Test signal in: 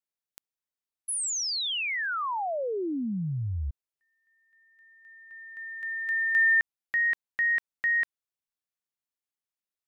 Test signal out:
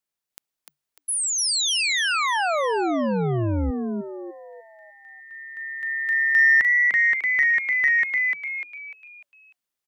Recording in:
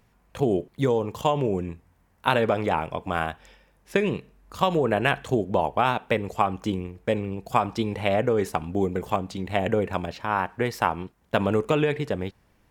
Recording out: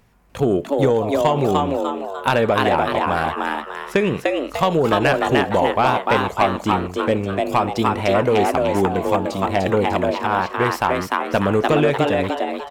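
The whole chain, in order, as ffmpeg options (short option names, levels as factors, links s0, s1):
-filter_complex "[0:a]asplit=6[s0][s1][s2][s3][s4][s5];[s1]adelay=298,afreqshift=140,volume=0.708[s6];[s2]adelay=596,afreqshift=280,volume=0.292[s7];[s3]adelay=894,afreqshift=420,volume=0.119[s8];[s4]adelay=1192,afreqshift=560,volume=0.049[s9];[s5]adelay=1490,afreqshift=700,volume=0.02[s10];[s0][s6][s7][s8][s9][s10]amix=inputs=6:normalize=0,aeval=exprs='0.668*(cos(1*acos(clip(val(0)/0.668,-1,1)))-cos(1*PI/2))+0.0944*(cos(5*acos(clip(val(0)/0.668,-1,1)))-cos(5*PI/2))':c=same,volume=1.12"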